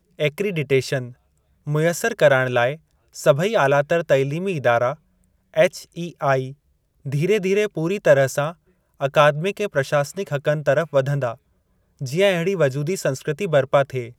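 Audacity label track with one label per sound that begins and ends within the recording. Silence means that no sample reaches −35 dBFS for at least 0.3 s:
1.670000	2.760000	sound
3.150000	4.940000	sound
5.540000	6.520000	sound
7.050000	8.520000	sound
9.010000	11.340000	sound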